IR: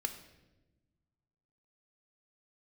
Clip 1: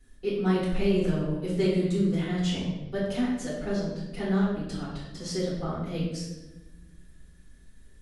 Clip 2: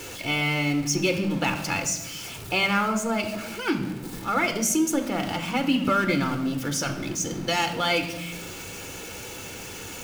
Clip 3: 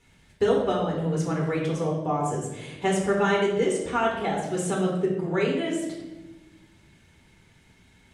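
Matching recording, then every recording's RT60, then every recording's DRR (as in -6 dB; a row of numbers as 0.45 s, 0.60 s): 2; 1.1 s, 1.1 s, 1.1 s; -10.0 dB, 6.0 dB, -3.5 dB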